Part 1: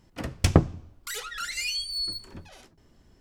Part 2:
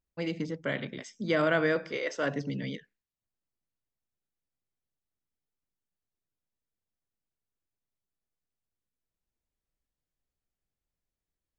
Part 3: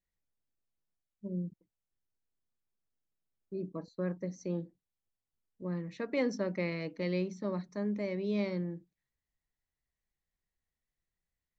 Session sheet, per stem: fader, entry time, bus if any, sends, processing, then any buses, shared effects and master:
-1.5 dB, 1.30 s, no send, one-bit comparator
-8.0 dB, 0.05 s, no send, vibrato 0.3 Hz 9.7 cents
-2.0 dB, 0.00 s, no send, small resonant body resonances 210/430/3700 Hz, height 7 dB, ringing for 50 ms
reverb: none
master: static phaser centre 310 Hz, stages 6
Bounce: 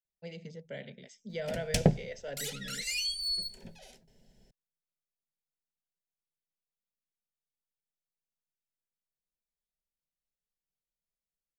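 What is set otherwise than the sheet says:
stem 1: missing one-bit comparator; stem 2: missing vibrato 0.3 Hz 9.7 cents; stem 3: muted

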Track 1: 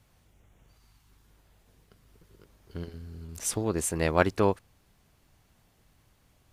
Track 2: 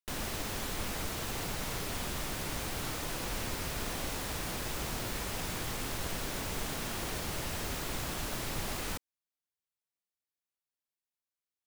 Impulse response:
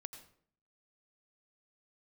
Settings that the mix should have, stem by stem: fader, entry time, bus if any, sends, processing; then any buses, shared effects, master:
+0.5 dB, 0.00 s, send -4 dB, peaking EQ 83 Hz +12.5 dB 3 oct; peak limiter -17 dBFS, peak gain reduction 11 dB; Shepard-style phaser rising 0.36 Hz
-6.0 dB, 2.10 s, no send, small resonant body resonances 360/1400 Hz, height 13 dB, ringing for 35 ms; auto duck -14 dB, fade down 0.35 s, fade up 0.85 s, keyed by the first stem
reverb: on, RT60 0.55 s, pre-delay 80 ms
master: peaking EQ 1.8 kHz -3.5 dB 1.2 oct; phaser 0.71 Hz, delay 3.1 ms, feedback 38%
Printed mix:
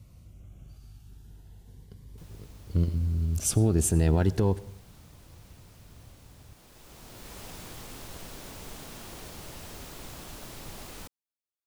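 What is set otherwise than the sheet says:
stem 2: missing small resonant body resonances 360/1400 Hz, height 13 dB, ringing for 35 ms; master: missing phaser 0.71 Hz, delay 3.1 ms, feedback 38%

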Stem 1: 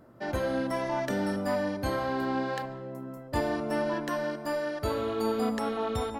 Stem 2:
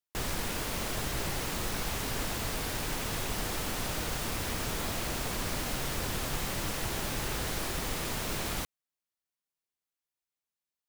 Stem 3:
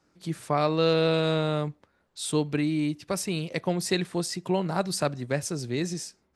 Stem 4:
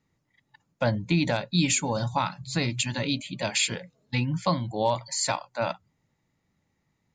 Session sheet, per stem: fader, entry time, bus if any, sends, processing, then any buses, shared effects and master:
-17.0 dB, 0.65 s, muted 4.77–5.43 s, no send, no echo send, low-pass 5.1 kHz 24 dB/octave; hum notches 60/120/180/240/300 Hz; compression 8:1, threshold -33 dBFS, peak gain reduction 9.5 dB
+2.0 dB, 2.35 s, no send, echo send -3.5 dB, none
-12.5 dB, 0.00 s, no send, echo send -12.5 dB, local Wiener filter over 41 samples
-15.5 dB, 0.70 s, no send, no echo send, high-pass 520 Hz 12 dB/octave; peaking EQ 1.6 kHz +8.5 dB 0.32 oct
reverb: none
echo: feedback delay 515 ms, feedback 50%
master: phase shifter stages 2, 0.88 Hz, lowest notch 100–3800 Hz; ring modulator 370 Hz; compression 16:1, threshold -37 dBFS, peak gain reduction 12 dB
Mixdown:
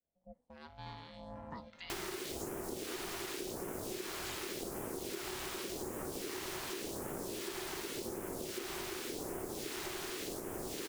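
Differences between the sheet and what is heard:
stem 2: entry 2.35 s -> 1.75 s; stem 3 -12.5 dB -> -20.5 dB

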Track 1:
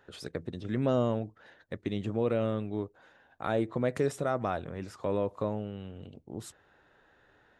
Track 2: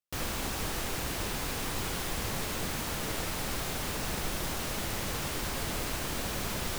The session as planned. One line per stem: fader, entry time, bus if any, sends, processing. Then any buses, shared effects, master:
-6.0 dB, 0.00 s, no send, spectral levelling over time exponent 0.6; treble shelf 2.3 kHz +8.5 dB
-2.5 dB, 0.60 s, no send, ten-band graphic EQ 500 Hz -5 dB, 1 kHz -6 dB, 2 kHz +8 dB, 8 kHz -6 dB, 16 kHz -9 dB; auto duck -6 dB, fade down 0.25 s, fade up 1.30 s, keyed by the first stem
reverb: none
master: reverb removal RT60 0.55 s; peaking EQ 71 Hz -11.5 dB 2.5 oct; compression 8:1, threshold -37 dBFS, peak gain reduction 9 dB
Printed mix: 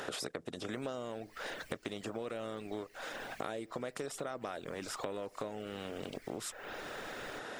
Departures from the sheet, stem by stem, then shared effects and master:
stem 1 -6.0 dB -> +4.5 dB; stem 2 -2.5 dB -> -9.0 dB

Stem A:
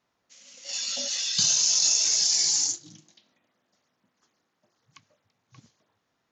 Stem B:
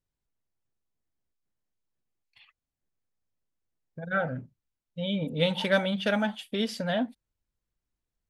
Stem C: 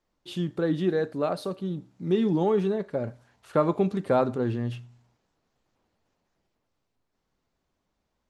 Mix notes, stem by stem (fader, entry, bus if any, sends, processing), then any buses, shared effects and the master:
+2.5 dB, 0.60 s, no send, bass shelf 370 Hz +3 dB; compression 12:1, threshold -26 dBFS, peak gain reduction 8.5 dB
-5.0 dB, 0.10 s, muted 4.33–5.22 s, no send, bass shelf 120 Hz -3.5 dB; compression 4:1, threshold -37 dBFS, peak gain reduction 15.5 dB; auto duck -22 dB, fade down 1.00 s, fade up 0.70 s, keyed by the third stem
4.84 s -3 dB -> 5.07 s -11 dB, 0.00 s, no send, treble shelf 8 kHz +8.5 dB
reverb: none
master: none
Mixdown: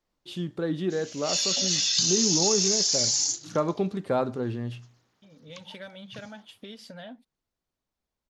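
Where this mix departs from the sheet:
stem C: missing treble shelf 8 kHz +8.5 dB; master: extra peaking EQ 4.6 kHz +3.5 dB 1.5 oct

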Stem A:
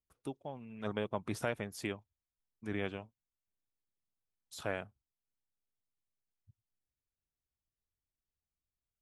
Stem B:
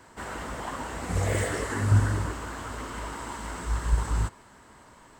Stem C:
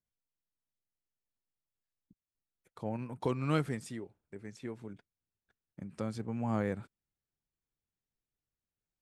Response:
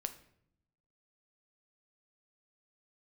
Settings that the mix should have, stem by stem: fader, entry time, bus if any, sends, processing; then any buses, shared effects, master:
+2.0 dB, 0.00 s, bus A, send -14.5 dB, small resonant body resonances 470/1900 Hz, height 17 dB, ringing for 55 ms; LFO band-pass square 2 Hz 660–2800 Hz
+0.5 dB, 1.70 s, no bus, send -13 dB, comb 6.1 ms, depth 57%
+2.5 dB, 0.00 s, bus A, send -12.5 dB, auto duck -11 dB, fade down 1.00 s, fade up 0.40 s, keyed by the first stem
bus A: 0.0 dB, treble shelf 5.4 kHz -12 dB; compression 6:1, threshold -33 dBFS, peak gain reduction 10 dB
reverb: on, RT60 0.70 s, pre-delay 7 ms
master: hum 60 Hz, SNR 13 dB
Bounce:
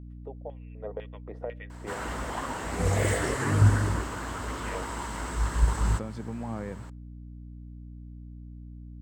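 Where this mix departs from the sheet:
stem B: missing comb 6.1 ms, depth 57%; reverb return -7.5 dB

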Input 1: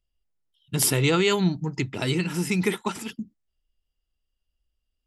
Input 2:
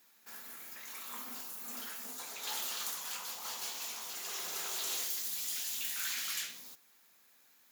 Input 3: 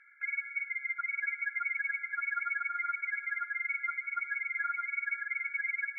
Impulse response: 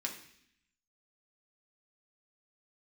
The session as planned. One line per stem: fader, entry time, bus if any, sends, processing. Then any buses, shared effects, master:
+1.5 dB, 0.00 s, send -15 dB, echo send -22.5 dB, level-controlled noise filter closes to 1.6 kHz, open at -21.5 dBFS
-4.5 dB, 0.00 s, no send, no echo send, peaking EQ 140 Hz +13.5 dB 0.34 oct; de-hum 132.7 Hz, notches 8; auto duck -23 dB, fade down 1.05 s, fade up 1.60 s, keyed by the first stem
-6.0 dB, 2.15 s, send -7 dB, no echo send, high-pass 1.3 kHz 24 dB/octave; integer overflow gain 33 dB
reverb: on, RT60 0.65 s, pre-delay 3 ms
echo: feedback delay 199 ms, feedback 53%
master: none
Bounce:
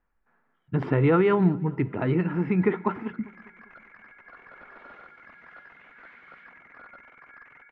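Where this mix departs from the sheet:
stem 1: missing level-controlled noise filter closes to 1.6 kHz, open at -21.5 dBFS; master: extra low-pass 1.7 kHz 24 dB/octave

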